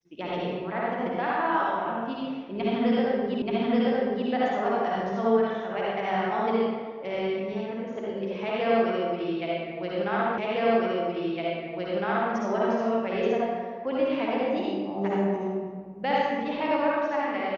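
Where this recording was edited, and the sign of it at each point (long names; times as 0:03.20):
0:03.42: the same again, the last 0.88 s
0:10.38: the same again, the last 1.96 s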